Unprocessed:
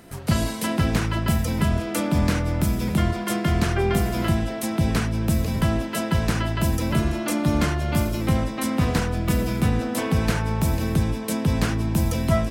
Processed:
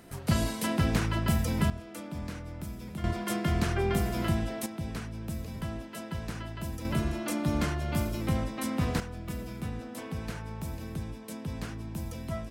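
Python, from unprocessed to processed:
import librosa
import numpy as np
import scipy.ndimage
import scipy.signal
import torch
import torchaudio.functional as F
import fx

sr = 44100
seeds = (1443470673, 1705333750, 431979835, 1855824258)

y = fx.gain(x, sr, db=fx.steps((0.0, -5.0), (1.7, -17.0), (3.04, -6.5), (4.66, -14.5), (6.85, -7.5), (9.0, -15.0)))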